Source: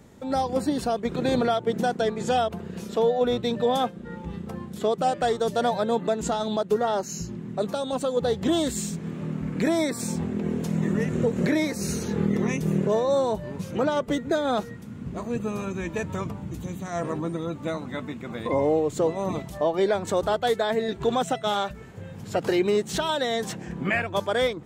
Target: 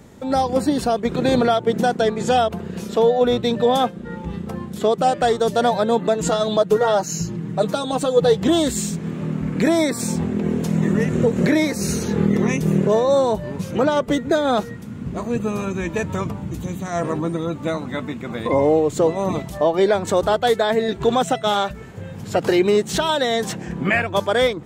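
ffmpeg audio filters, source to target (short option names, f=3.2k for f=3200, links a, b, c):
-filter_complex "[0:a]asettb=1/sr,asplit=3[a][b][c];[a]atrim=end=6.144[d];[b]atrim=start=6.14:end=8.43,asetpts=PTS-STARTPTS,afade=t=in:d=0.004:c=qsin,afade=t=out:st=2.286:d=0.004:c=qsin,aecho=1:1:6.4:0.68,atrim=end_sample=100989[e];[c]atrim=start=8.426[f];[d][e]acrossfade=d=0.004:c1=hsin:c2=qsin[g];[g][f]acrossfade=d=0.004:c1=qsin:c2=hsin,volume=6dB"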